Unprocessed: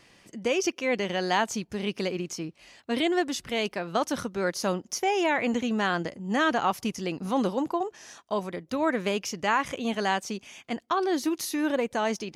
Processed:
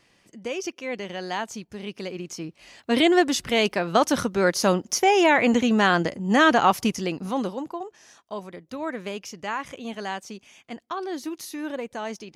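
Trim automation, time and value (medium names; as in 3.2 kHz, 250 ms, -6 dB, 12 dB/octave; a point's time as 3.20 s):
2.00 s -4.5 dB
2.99 s +7 dB
6.84 s +7 dB
7.68 s -5 dB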